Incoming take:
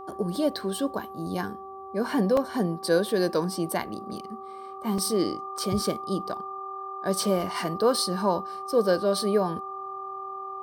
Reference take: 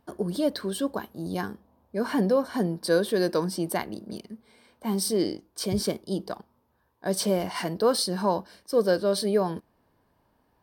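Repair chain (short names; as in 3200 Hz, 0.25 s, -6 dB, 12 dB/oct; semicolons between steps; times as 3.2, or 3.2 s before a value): de-hum 386.8 Hz, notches 3; notch 1200 Hz, Q 30; interpolate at 2.37/4.98/5.58, 3.2 ms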